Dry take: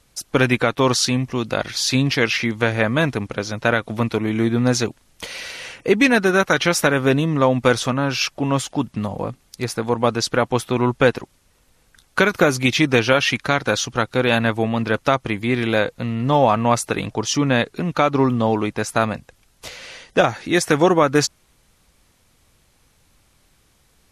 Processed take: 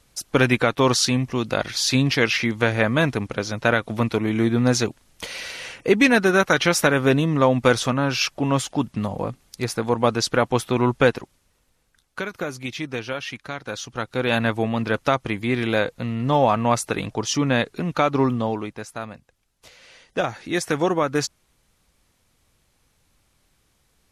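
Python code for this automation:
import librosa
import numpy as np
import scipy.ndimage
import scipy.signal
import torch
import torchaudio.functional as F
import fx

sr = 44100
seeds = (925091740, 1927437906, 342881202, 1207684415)

y = fx.gain(x, sr, db=fx.line((10.99, -1.0), (12.22, -13.0), (13.6, -13.0), (14.4, -2.5), (18.27, -2.5), (18.97, -13.5), (19.69, -13.5), (20.36, -6.0)))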